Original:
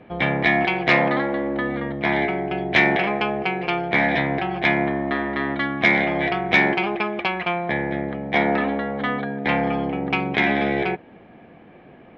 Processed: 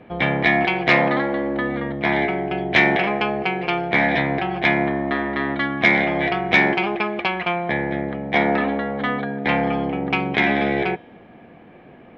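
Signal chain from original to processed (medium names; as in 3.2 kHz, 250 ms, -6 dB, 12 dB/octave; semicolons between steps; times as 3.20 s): feedback comb 240 Hz, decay 0.99 s, mix 50%; trim +7 dB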